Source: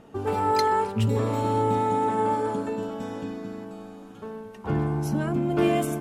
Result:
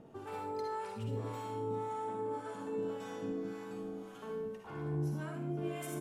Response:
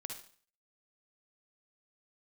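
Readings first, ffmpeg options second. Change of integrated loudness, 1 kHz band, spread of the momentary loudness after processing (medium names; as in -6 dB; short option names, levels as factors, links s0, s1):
-14.5 dB, -16.5 dB, 6 LU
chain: -filter_complex "[0:a]lowshelf=f=93:g=-7.5,areverse,acompressor=threshold=0.02:ratio=10,areverse,acrossover=split=700[s0][s1];[s0]aeval=exprs='val(0)*(1-0.7/2+0.7/2*cos(2*PI*1.8*n/s))':c=same[s2];[s1]aeval=exprs='val(0)*(1-0.7/2-0.7/2*cos(2*PI*1.8*n/s))':c=same[s3];[s2][s3]amix=inputs=2:normalize=0,aecho=1:1:482:0.126[s4];[1:a]atrim=start_sample=2205[s5];[s4][s5]afir=irnorm=-1:irlink=0,volume=1.41"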